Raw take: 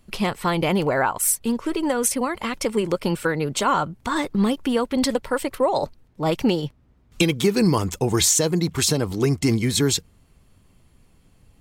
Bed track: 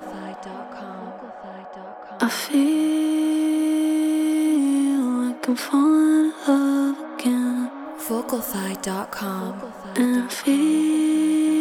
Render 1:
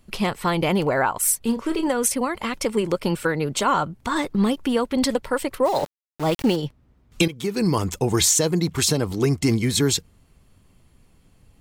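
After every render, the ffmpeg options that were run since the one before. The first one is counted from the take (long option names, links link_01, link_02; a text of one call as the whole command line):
ffmpeg -i in.wav -filter_complex "[0:a]asettb=1/sr,asplit=3[link_01][link_02][link_03];[link_01]atrim=end=1.414[link_04];[link_02]atrim=start=1.41:end=1.88,asetpts=PTS-STARTPTS,afade=type=in:duration=0.004:curve=qsin,afade=type=out:start_time=0.466:duration=0.004:curve=qsin,asplit=2[link_05][link_06];[link_06]adelay=31,volume=-9dB[link_07];[link_05][link_07]amix=inputs=2:normalize=0,atrim=end_sample=20727[link_08];[link_03]atrim=start=1.876[link_09];[link_04][link_08]acrossfade=duration=0.004:curve1=hsin:curve2=qsin[link_10];[link_10][link_09]acrossfade=duration=0.004:curve1=qsin:curve2=hsin,asplit=3[link_11][link_12][link_13];[link_11]afade=type=out:start_time=5.64:duration=0.02[link_14];[link_12]aeval=exprs='val(0)*gte(abs(val(0)),0.0299)':channel_layout=same,afade=type=in:start_time=5.64:duration=0.02,afade=type=out:start_time=6.55:duration=0.02[link_15];[link_13]afade=type=in:start_time=6.55:duration=0.02[link_16];[link_14][link_15][link_16]amix=inputs=3:normalize=0,asplit=2[link_17][link_18];[link_17]atrim=end=7.28,asetpts=PTS-STARTPTS,afade=type=out:start_time=7.276:duration=0.004:curve=hsin:silence=0.177828[link_19];[link_18]atrim=start=7.28,asetpts=PTS-STARTPTS,afade=type=in:duration=0.56:silence=0.177828[link_20];[link_19][link_20]concat=n=2:v=0:a=1" out.wav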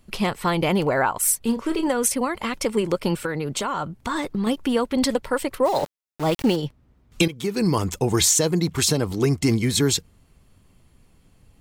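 ffmpeg -i in.wav -filter_complex "[0:a]asettb=1/sr,asplit=3[link_01][link_02][link_03];[link_01]atrim=end=3.244[link_04];[link_02]atrim=start=3.24:end=4.47,asetpts=PTS-STARTPTS,afade=type=in:duration=0.004:curve=qsin,afade=type=out:start_time=1.226:duration=0.004:curve=qsin,acompressor=threshold=-21dB:ratio=6:attack=3.2:release=140:knee=1:detection=peak[link_05];[link_03]atrim=start=4.466[link_06];[link_04][link_05]acrossfade=duration=0.004:curve1=hsin:curve2=qsin[link_07];[link_07][link_06]acrossfade=duration=0.004:curve1=qsin:curve2=hsin" out.wav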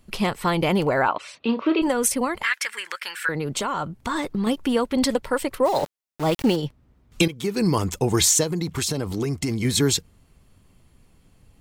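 ffmpeg -i in.wav -filter_complex "[0:a]asettb=1/sr,asplit=3[link_01][link_02][link_03];[link_01]atrim=end=1.084[link_04];[link_02]atrim=start=1.08:end=1.82,asetpts=PTS-STARTPTS,afade=type=in:duration=0.004:curve=qsin,afade=type=out:start_time=0.736:duration=0.004:curve=qsin,highpass=200,equalizer=frequency=300:width_type=q:width=4:gain=6,equalizer=frequency=620:width_type=q:width=4:gain=7,equalizer=frequency=1200:width_type=q:width=4:gain=6,equalizer=frequency=2600:width_type=q:width=4:gain=8,equalizer=frequency=3900:width_type=q:width=4:gain=6,lowpass=frequency=4000:width=0.5412,lowpass=frequency=4000:width=1.3066[link_05];[link_03]atrim=start=1.816[link_06];[link_04][link_05]acrossfade=duration=0.004:curve1=hsin:curve2=qsin[link_07];[link_07][link_06]acrossfade=duration=0.004:curve1=qsin:curve2=hsin,asettb=1/sr,asplit=3[link_08][link_09][link_10];[link_08]atrim=end=2.434[link_11];[link_09]atrim=start=2.43:end=3.29,asetpts=PTS-STARTPTS,afade=type=in:duration=0.004:curve=qsin,afade=type=out:start_time=0.856:duration=0.004:curve=qsin,highpass=frequency=1700:width_type=q:width=5.7[link_12];[link_10]atrim=start=3.286[link_13];[link_11][link_12]acrossfade=duration=0.004:curve1=hsin:curve2=qsin[link_14];[link_14][link_13]acrossfade=duration=0.004:curve1=qsin:curve2=hsin,asettb=1/sr,asplit=3[link_15][link_16][link_17];[link_15]atrim=end=8.434[link_18];[link_16]atrim=start=8.43:end=9.65,asetpts=PTS-STARTPTS,afade=type=in:duration=0.004:curve=qsin,afade=type=out:start_time=1.216:duration=0.004:curve=qsin,acompressor=threshold=-21dB:ratio=6:attack=3.2:release=140:knee=1:detection=peak[link_19];[link_17]atrim=start=9.646[link_20];[link_18][link_19]acrossfade=duration=0.004:curve1=hsin:curve2=qsin[link_21];[link_21][link_20]acrossfade=duration=0.004:curve1=qsin:curve2=hsin" out.wav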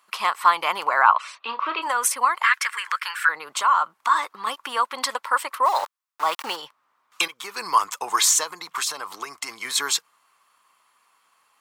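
ffmpeg -i in.wav -af "highpass=frequency=1100:width_type=q:width=4.1" out.wav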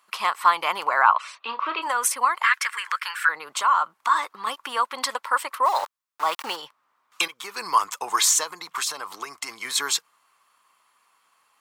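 ffmpeg -i in.wav -af "volume=-1dB,alimiter=limit=-3dB:level=0:latency=1" out.wav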